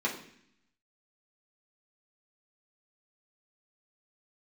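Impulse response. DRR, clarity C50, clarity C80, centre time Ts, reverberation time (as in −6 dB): −5.0 dB, 8.5 dB, 11.5 dB, 23 ms, 0.65 s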